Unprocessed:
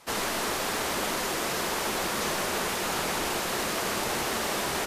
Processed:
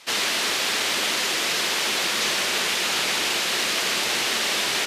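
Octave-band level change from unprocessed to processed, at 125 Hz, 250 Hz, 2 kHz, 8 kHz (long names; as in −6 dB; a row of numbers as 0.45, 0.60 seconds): −4.5, −1.5, +7.5, +6.5 decibels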